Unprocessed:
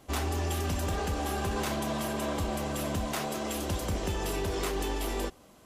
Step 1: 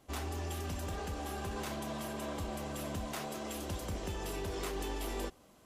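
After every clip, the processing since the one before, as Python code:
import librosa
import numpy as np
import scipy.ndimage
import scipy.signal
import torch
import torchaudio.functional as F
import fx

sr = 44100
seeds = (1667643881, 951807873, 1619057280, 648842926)

y = fx.rider(x, sr, range_db=4, speed_s=2.0)
y = y * librosa.db_to_amplitude(-7.5)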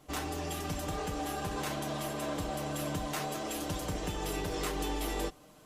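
y = x + 0.57 * np.pad(x, (int(6.6 * sr / 1000.0), 0))[:len(x)]
y = y * librosa.db_to_amplitude(3.5)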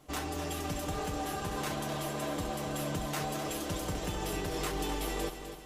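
y = fx.echo_feedback(x, sr, ms=254, feedback_pct=49, wet_db=-9.5)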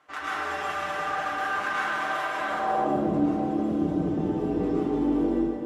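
y = fx.filter_sweep_bandpass(x, sr, from_hz=1500.0, to_hz=270.0, start_s=2.39, end_s=2.92, q=2.3)
y = fx.rev_plate(y, sr, seeds[0], rt60_s=1.7, hf_ratio=0.65, predelay_ms=95, drr_db=-7.5)
y = y * librosa.db_to_amplitude(8.5)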